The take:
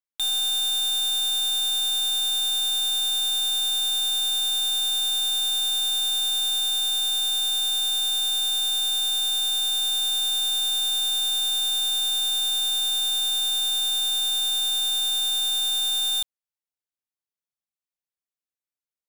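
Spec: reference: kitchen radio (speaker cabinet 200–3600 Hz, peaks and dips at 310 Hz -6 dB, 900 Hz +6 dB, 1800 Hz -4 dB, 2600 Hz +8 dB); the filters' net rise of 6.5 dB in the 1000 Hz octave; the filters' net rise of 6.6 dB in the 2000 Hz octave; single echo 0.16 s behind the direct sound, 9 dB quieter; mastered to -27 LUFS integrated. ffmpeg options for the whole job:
-af "highpass=200,equalizer=f=310:t=q:w=4:g=-6,equalizer=f=900:t=q:w=4:g=6,equalizer=f=1.8k:t=q:w=4:g=-4,equalizer=f=2.6k:t=q:w=4:g=8,lowpass=f=3.6k:w=0.5412,lowpass=f=3.6k:w=1.3066,equalizer=f=1k:t=o:g=5,equalizer=f=2k:t=o:g=6,aecho=1:1:160:0.355,volume=-2.5dB"

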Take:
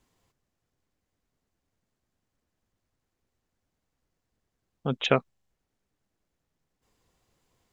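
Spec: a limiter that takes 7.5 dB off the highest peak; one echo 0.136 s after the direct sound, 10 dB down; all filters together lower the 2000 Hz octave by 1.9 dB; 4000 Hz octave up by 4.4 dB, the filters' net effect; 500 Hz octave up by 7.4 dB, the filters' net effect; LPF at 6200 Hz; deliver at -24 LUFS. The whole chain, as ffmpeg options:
-af "lowpass=6.2k,equalizer=f=500:t=o:g=9,equalizer=f=2k:t=o:g=-7,equalizer=f=4k:t=o:g=9,alimiter=limit=-10dB:level=0:latency=1,aecho=1:1:136:0.316,volume=2.5dB"

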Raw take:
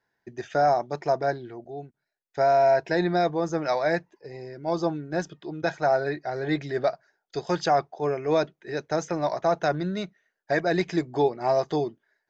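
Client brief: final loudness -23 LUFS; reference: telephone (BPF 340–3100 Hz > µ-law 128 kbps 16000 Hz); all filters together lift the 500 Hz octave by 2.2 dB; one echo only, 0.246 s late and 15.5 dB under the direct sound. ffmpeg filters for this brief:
-af "highpass=340,lowpass=3.1k,equalizer=f=500:t=o:g=4,aecho=1:1:246:0.168,volume=1.5dB" -ar 16000 -c:a pcm_mulaw

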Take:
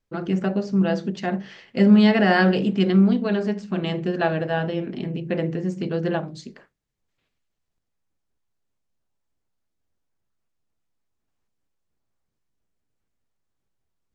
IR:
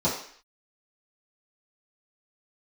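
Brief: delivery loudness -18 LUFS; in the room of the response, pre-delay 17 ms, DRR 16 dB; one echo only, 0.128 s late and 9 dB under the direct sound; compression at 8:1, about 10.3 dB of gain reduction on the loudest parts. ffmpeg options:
-filter_complex "[0:a]acompressor=threshold=-20dB:ratio=8,aecho=1:1:128:0.355,asplit=2[a][b];[1:a]atrim=start_sample=2205,adelay=17[c];[b][c]afir=irnorm=-1:irlink=0,volume=-28.5dB[d];[a][d]amix=inputs=2:normalize=0,volume=7.5dB"

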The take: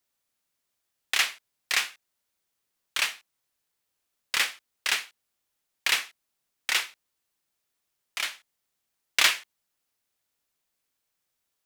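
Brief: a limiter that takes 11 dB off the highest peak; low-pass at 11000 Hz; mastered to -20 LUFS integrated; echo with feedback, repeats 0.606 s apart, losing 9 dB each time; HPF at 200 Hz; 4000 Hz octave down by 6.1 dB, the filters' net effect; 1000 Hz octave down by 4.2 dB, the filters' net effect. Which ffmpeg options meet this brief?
-af "highpass=200,lowpass=11k,equalizer=f=1k:t=o:g=-5,equalizer=f=4k:t=o:g=-8,alimiter=limit=-22dB:level=0:latency=1,aecho=1:1:606|1212|1818|2424:0.355|0.124|0.0435|0.0152,volume=18dB"

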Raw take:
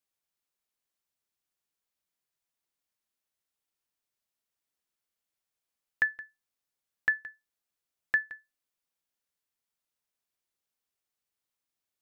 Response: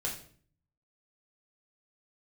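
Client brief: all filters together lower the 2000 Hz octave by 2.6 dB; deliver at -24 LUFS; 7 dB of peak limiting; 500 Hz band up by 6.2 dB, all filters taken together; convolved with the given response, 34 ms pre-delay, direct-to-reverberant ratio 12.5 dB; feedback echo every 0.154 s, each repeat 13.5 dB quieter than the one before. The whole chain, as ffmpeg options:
-filter_complex "[0:a]equalizer=f=500:t=o:g=8,equalizer=f=2k:t=o:g=-3.5,alimiter=limit=-22dB:level=0:latency=1,aecho=1:1:154|308:0.211|0.0444,asplit=2[a][b];[1:a]atrim=start_sample=2205,adelay=34[c];[b][c]afir=irnorm=-1:irlink=0,volume=-16dB[d];[a][d]amix=inputs=2:normalize=0,volume=14.5dB"

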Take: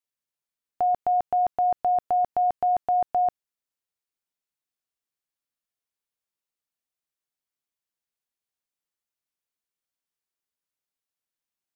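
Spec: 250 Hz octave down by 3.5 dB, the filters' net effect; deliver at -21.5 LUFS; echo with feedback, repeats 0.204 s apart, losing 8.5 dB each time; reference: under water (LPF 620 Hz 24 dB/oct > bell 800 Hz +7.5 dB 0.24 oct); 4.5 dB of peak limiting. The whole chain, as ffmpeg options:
-af "equalizer=f=250:t=o:g=-5,alimiter=limit=-22.5dB:level=0:latency=1,lowpass=f=620:w=0.5412,lowpass=f=620:w=1.3066,equalizer=f=800:t=o:w=0.24:g=7.5,aecho=1:1:204|408|612|816:0.376|0.143|0.0543|0.0206,volume=12.5dB"

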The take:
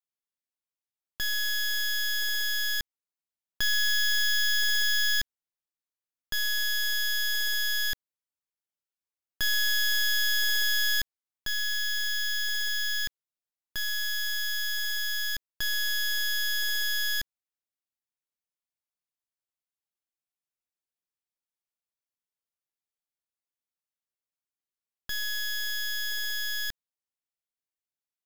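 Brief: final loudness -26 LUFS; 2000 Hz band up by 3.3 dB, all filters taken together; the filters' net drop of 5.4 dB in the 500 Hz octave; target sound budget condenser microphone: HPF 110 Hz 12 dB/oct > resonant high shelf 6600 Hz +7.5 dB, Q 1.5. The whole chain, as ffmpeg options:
-af "highpass=110,equalizer=f=500:t=o:g=-7,equalizer=f=2k:t=o:g=5,highshelf=f=6.6k:t=q:w=1.5:g=7.5,volume=-2.5dB"

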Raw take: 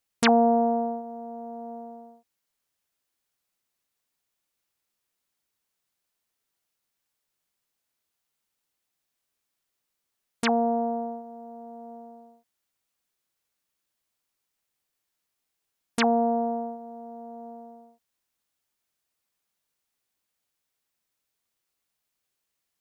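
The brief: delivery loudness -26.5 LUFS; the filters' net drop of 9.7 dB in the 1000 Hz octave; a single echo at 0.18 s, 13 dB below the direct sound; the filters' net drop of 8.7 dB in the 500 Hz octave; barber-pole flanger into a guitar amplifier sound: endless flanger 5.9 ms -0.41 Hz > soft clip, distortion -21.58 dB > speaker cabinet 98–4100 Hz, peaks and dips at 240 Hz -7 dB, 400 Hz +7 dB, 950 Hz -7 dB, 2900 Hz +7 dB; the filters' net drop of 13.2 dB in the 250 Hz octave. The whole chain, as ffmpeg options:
-filter_complex "[0:a]equalizer=f=250:t=o:g=-5.5,equalizer=f=500:t=o:g=-8.5,equalizer=f=1k:t=o:g=-7.5,aecho=1:1:180:0.224,asplit=2[a][b];[b]adelay=5.9,afreqshift=-0.41[c];[a][c]amix=inputs=2:normalize=1,asoftclip=threshold=-20.5dB,highpass=98,equalizer=f=240:t=q:w=4:g=-7,equalizer=f=400:t=q:w=4:g=7,equalizer=f=950:t=q:w=4:g=-7,equalizer=f=2.9k:t=q:w=4:g=7,lowpass=f=4.1k:w=0.5412,lowpass=f=4.1k:w=1.3066,volume=10.5dB"

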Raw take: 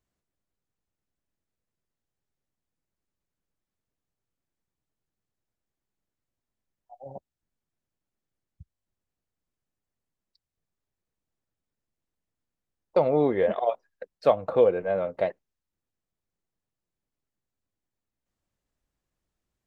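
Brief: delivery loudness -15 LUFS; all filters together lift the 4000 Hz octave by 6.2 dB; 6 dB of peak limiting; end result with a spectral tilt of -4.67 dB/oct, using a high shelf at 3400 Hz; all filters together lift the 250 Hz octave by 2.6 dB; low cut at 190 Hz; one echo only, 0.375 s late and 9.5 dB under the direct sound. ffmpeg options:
-af "highpass=190,equalizer=f=250:t=o:g=4.5,highshelf=f=3.4k:g=4,equalizer=f=4k:t=o:g=5,alimiter=limit=-13dB:level=0:latency=1,aecho=1:1:375:0.335,volume=11dB"

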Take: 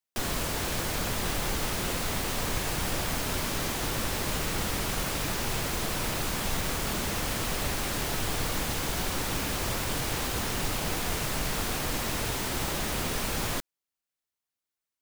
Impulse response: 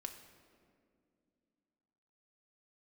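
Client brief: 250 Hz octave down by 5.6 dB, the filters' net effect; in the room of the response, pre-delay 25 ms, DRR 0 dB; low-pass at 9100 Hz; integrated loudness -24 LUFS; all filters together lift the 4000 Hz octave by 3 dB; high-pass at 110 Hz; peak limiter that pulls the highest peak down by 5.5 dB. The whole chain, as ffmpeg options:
-filter_complex "[0:a]highpass=110,lowpass=9.1k,equalizer=f=250:t=o:g=-7.5,equalizer=f=4k:t=o:g=4,alimiter=level_in=0.5dB:limit=-24dB:level=0:latency=1,volume=-0.5dB,asplit=2[a][b];[1:a]atrim=start_sample=2205,adelay=25[c];[b][c]afir=irnorm=-1:irlink=0,volume=3.5dB[d];[a][d]amix=inputs=2:normalize=0,volume=5.5dB"

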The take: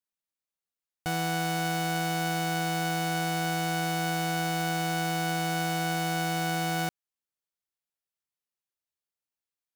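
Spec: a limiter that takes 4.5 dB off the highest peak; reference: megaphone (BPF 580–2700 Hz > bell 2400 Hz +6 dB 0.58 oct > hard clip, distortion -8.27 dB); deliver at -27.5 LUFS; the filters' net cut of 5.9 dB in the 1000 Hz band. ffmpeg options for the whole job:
-af "equalizer=f=1k:t=o:g=-8,alimiter=level_in=1.5dB:limit=-24dB:level=0:latency=1,volume=-1.5dB,highpass=580,lowpass=2.7k,equalizer=f=2.4k:t=o:w=0.58:g=6,asoftclip=type=hard:threshold=-37.5dB,volume=13.5dB"

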